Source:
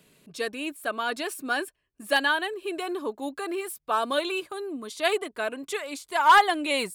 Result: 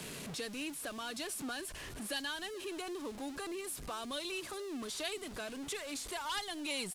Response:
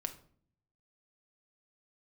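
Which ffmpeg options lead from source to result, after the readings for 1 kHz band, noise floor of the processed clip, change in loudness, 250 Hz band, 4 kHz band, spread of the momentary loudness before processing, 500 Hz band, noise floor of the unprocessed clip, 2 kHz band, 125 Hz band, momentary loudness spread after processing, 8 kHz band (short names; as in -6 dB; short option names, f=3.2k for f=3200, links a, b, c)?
-20.0 dB, -47 dBFS, -13.5 dB, -8.5 dB, -8.5 dB, 14 LU, -13.5 dB, -76 dBFS, -15.5 dB, n/a, 5 LU, -2.0 dB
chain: -filter_complex "[0:a]aeval=exprs='val(0)+0.5*0.0266*sgn(val(0))':c=same,lowpass=f=12k:w=0.5412,lowpass=f=12k:w=1.3066,acrossover=split=220|3000[a][b][c];[b]acompressor=threshold=-34dB:ratio=6[d];[a][d][c]amix=inputs=3:normalize=0,acrusher=bits=9:mix=0:aa=0.000001,aecho=1:1:429:0.075,volume=-7.5dB"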